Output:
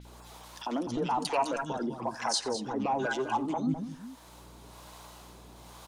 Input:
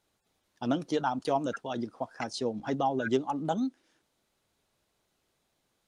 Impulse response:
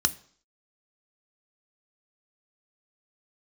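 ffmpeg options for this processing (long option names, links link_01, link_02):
-filter_complex "[0:a]highpass=130,equalizer=frequency=990:width=2.4:gain=10,aeval=exprs='0.299*sin(PI/2*2*val(0)/0.299)':channel_layout=same,acompressor=threshold=-30dB:ratio=2,alimiter=limit=-23dB:level=0:latency=1:release=78,acrossover=split=230|1900[link_01][link_02][link_03];[link_02]adelay=50[link_04];[link_01]adelay=250[link_05];[link_05][link_04][link_03]amix=inputs=3:normalize=0,acrossover=split=450[link_06][link_07];[link_06]aeval=exprs='val(0)*(1-0.7/2+0.7/2*cos(2*PI*1.1*n/s))':channel_layout=same[link_08];[link_07]aeval=exprs='val(0)*(1-0.7/2-0.7/2*cos(2*PI*1.1*n/s))':channel_layout=same[link_09];[link_08][link_09]amix=inputs=2:normalize=0,aeval=exprs='val(0)+0.000355*(sin(2*PI*60*n/s)+sin(2*PI*2*60*n/s)/2+sin(2*PI*3*60*n/s)/3+sin(2*PI*4*60*n/s)/4+sin(2*PI*5*60*n/s)/5)':channel_layout=same,asplit=2[link_10][link_11];[link_11]aecho=0:1:87|206:0.119|0.299[link_12];[link_10][link_12]amix=inputs=2:normalize=0,acompressor=mode=upward:threshold=-41dB:ratio=2.5,adynamicequalizer=threshold=0.00178:dfrequency=5700:dqfactor=0.7:tfrequency=5700:tqfactor=0.7:attack=5:release=100:ratio=0.375:range=3:mode=boostabove:tftype=highshelf,volume=4dB"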